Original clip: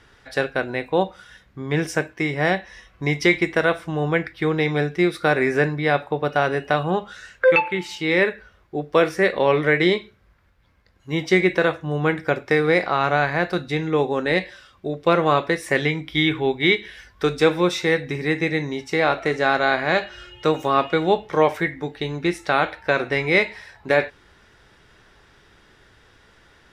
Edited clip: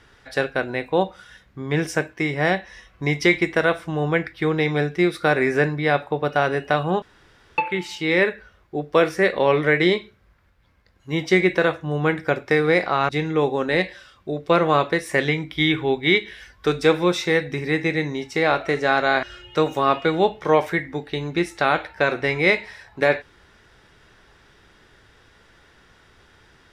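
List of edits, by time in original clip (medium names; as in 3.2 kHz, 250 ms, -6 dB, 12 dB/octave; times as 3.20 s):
7.02–7.58 s: room tone
13.09–13.66 s: delete
19.80–20.11 s: delete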